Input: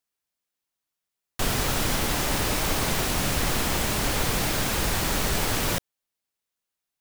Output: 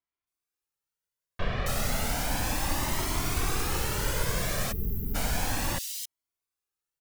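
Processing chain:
multiband delay without the direct sound lows, highs 270 ms, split 3,400 Hz
gain on a spectral selection 0:04.72–0:05.15, 460–12,000 Hz −30 dB
flanger whose copies keep moving one way rising 0.33 Hz

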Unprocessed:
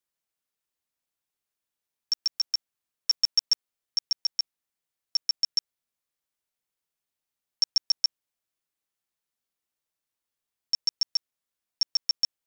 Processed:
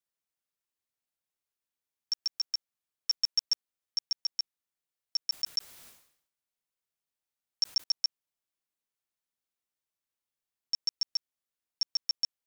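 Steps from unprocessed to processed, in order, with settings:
0:05.18–0:07.84: level that may fall only so fast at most 88 dB per second
level −5 dB

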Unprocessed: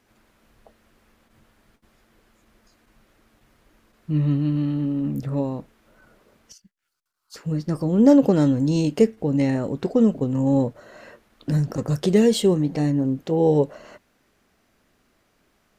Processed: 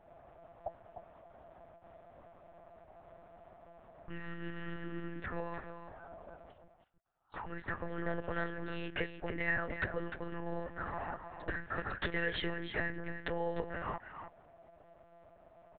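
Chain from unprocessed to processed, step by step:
downward compressor 4 to 1, threshold −26 dBFS, peak gain reduction 14 dB
envelope filter 640–1,700 Hz, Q 5.3, up, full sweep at −30.5 dBFS
on a send: single-tap delay 306 ms −8.5 dB
on the sum: one-pitch LPC vocoder at 8 kHz 170 Hz
level +16.5 dB

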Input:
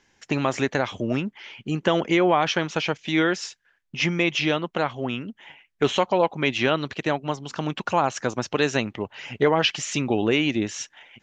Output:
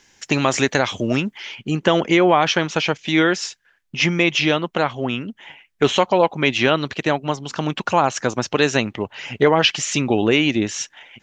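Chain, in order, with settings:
high-shelf EQ 3,600 Hz +11 dB, from 0:01.55 +2.5 dB
level +4.5 dB

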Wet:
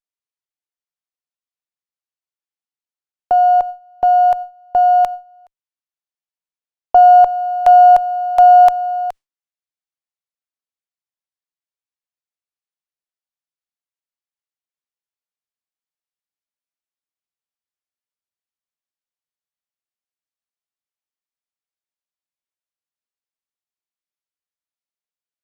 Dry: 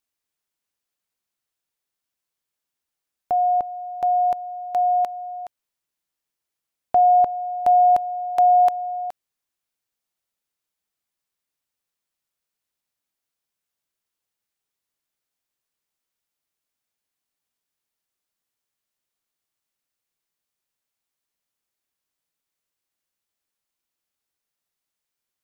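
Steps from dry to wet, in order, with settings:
inverse Chebyshev high-pass filter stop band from 240 Hz, stop band 40 dB
noise gate with hold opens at −21 dBFS
windowed peak hold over 3 samples
level +8 dB

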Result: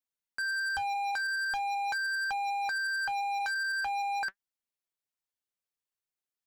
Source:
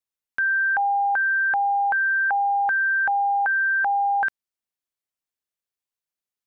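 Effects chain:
flanger 0.44 Hz, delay 3.5 ms, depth 8.1 ms, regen +62%
gain into a clipping stage and back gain 31 dB

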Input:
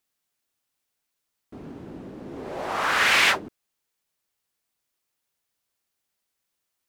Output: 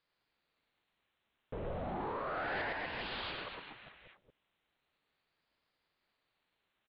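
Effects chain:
gate with flip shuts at −21 dBFS, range −25 dB
reverse bouncing-ball delay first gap 110 ms, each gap 1.2×, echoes 5
soft clipping −37.5 dBFS, distortion −8 dB
downsampling to 8,000 Hz
ring modulator whose carrier an LFO sweeps 730 Hz, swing 75%, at 0.35 Hz
level +6 dB

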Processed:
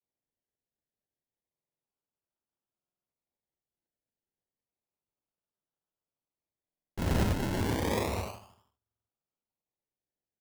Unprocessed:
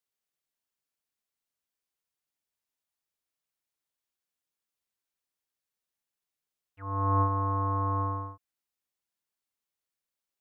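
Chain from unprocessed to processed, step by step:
adaptive Wiener filter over 9 samples
cochlear-implant simulation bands 12
double-tracking delay 29 ms −10.5 dB
on a send: repeating echo 79 ms, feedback 54%, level −14.5 dB
on the sum: frequency shifter −34 Hz
pitch vibrato 0.6 Hz 48 cents
sample-and-hold swept by an LFO 29×, swing 60% 0.31 Hz
buffer that repeats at 0:01.51/0:02.75/0:06.65/0:08.77, samples 2,048, times 6

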